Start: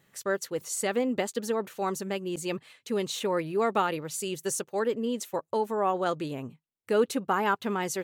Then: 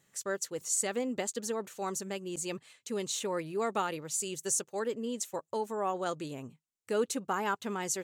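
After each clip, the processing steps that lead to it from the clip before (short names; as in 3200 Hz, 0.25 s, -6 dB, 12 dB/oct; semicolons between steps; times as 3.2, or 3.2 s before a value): bell 7200 Hz +10.5 dB 0.93 oct; gain -6 dB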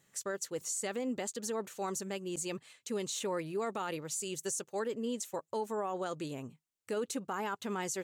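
limiter -27 dBFS, peak gain reduction 10 dB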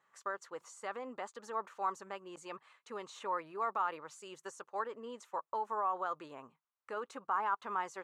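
band-pass 1100 Hz, Q 3.1; gain +8.5 dB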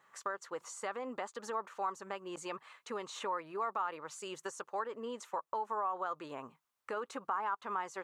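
compressor 2:1, threshold -47 dBFS, peak gain reduction 10.5 dB; gain +7.5 dB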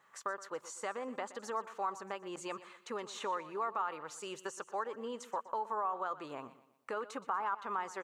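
feedback echo 0.121 s, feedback 41%, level -16 dB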